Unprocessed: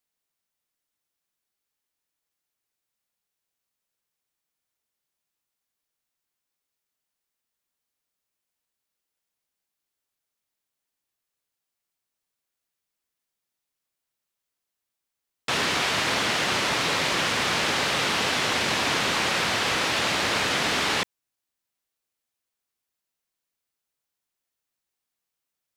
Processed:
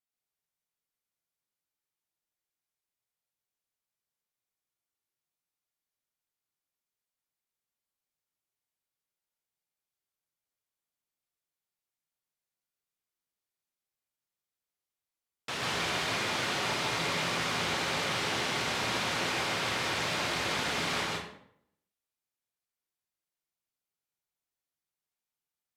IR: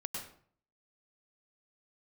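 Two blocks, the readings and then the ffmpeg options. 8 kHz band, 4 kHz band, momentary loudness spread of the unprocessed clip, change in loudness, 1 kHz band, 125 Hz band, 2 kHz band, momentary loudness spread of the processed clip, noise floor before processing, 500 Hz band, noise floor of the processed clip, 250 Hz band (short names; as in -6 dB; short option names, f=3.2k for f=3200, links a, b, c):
-7.5 dB, -7.5 dB, 1 LU, -7.5 dB, -6.5 dB, -4.0 dB, -7.5 dB, 3 LU, -85 dBFS, -6.0 dB, under -85 dBFS, -6.0 dB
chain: -filter_complex "[1:a]atrim=start_sample=2205,asetrate=33516,aresample=44100[a];[0:a][a]afir=irnorm=-1:irlink=0,volume=-9dB"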